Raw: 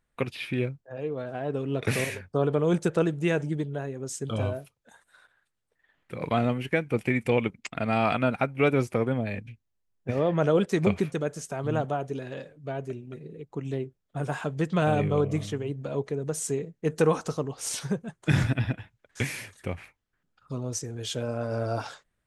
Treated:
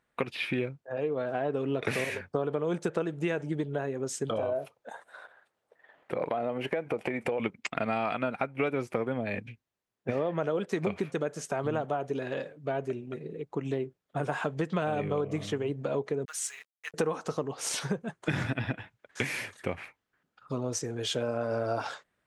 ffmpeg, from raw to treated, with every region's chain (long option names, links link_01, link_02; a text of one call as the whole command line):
ffmpeg -i in.wav -filter_complex "[0:a]asettb=1/sr,asplit=3[link_01][link_02][link_03];[link_01]atrim=end=4.304[link_04];[link_02]atrim=start=4.3:end=7.4,asetpts=PTS-STARTPTS,afade=type=in:duration=0.004:curve=qsin,afade=type=out:start_time=3.096:duration=0.004:curve=qsin,equalizer=frequency=620:width_type=o:width=1.7:gain=12,acompressor=threshold=-30dB:ratio=4:attack=3.2:release=140:knee=1:detection=peak[link_05];[link_03]atrim=start=7.396[link_06];[link_04][link_05]acrossfade=duration=0.004:curve1=hsin:curve2=qsin[link_07];[link_07][link_06]acrossfade=duration=0.004:curve1=qsin:curve2=hsin,asettb=1/sr,asplit=3[link_08][link_09][link_10];[link_08]atrim=end=16.254[link_11];[link_09]atrim=start=16.25:end=16.94,asetpts=PTS-STARTPTS,afade=type=in:duration=0.004:curve=qsin,afade=type=out:start_time=0.686:duration=0.004:curve=qsin,highpass=frequency=1400:width=0.5412,highpass=frequency=1400:width=1.3066,acrusher=bits=8:mix=0:aa=0.5[link_12];[link_10]atrim=start=16.936[link_13];[link_11][link_12]acrossfade=duration=0.004:curve1=hsin:curve2=qsin[link_14];[link_14][link_13]acrossfade=duration=0.004:curve1=qsin:curve2=hsin,highpass=frequency=320:poles=1,highshelf=frequency=4500:gain=-10,acompressor=threshold=-33dB:ratio=6,volume=6.5dB" out.wav